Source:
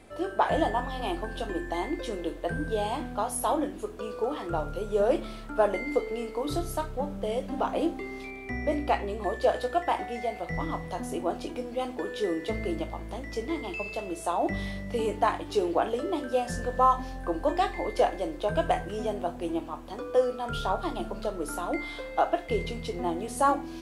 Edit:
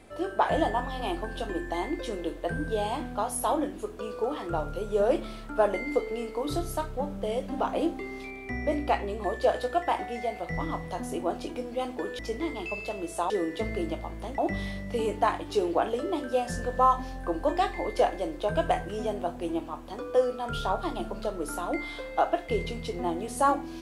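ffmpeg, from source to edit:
-filter_complex "[0:a]asplit=4[a][b][c][d];[a]atrim=end=12.192[e];[b]atrim=start=13.268:end=14.382[f];[c]atrim=start=12.188:end=13.272[g];[d]atrim=start=14.378[h];[e][f]acrossfade=d=0.004:c1=hsin:c2=hsin[i];[i][g]acrossfade=d=0.004:c1=hsin:c2=hsin[j];[j][h]acrossfade=d=0.004:c1=hsin:c2=hsin"

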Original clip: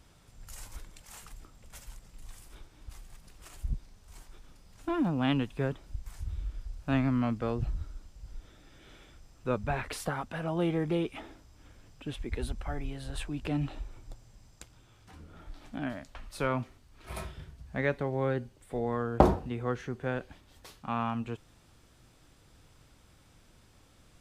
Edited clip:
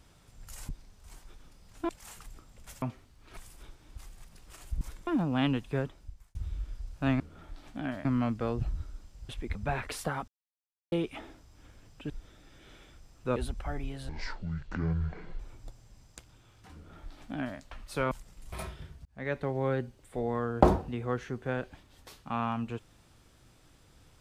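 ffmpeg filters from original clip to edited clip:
-filter_complex "[0:a]asplit=21[a][b][c][d][e][f][g][h][i][j][k][l][m][n][o][p][q][r][s][t][u];[a]atrim=end=0.692[v];[b]atrim=start=3.728:end=4.932[w];[c]atrim=start=0.948:end=1.882[x];[d]atrim=start=16.548:end=17.102[y];[e]atrim=start=2.288:end=3.732[z];[f]atrim=start=0.688:end=0.952[aa];[g]atrim=start=4.928:end=6.21,asetpts=PTS-STARTPTS,afade=t=out:st=0.712:d=0.57[ab];[h]atrim=start=6.21:end=7.062,asetpts=PTS-STARTPTS,afade=t=in:d=0.004:c=hsin[ac];[i]atrim=start=15.178:end=16.032[ad];[j]atrim=start=7.058:end=8.302[ae];[k]atrim=start=12.108:end=12.372[af];[l]atrim=start=9.558:end=10.29,asetpts=PTS-STARTPTS,afade=t=out:st=0.728:d=0.004:c=hsin[ag];[m]atrim=start=10.29:end=10.93,asetpts=PTS-STARTPTS,volume=0[ah];[n]atrim=start=10.93:end=12.112,asetpts=PTS-STARTPTS,afade=t=in:d=0.004:c=hsin[ai];[o]atrim=start=8.298:end=9.562[aj];[p]atrim=start=12.368:end=13.104[ak];[q]atrim=start=13.1:end=13.83,asetpts=PTS-STARTPTS,asetrate=24696,aresample=44100,atrim=end_sample=57487,asetpts=PTS-STARTPTS[al];[r]atrim=start=13.826:end=16.552[am];[s]atrim=start=1.878:end=2.292[an];[t]atrim=start=17.098:end=17.63,asetpts=PTS-STARTPTS,afade=t=out:st=0.528:d=0.004:c=hsin[ao];[u]atrim=start=17.63,asetpts=PTS-STARTPTS,afade=t=in:d=0.4[ap];[v][w]acrossfade=d=0.004:c1=hsin:c2=hsin[aq];[aq][x]acrossfade=d=0.004:c1=hsin:c2=hsin[ar];[ar][y]acrossfade=d=0.004:c1=hsin:c2=hsin[as];[as][z]acrossfade=d=0.004:c1=hsin:c2=hsin[at];[at][aa]acrossfade=d=0.004:c1=hsin:c2=hsin[au];[ab][ac]concat=n=2:v=0:a=1[av];[au][av]acrossfade=d=0.004:c1=hsin:c2=hsin[aw];[aw][ad]acrossfade=d=0.004:c1=hsin:c2=hsin[ax];[ax][ae]acrossfade=d=0.004:c1=hsin:c2=hsin[ay];[ay][af]acrossfade=d=0.004:c1=hsin:c2=hsin[az];[ag][ah][ai]concat=n=3:v=0:a=1[ba];[az][ba]acrossfade=d=0.004:c1=hsin:c2=hsin[bb];[bb][aj]acrossfade=d=0.004:c1=hsin:c2=hsin[bc];[bc][ak]acrossfade=d=0.004:c1=hsin:c2=hsin[bd];[bd][al]acrossfade=d=0.004:c1=hsin:c2=hsin[be];[be][am]acrossfade=d=0.004:c1=hsin:c2=hsin[bf];[bf][an]acrossfade=d=0.004:c1=hsin:c2=hsin[bg];[ao][ap]concat=n=2:v=0:a=1[bh];[bg][bh]acrossfade=d=0.004:c1=hsin:c2=hsin"

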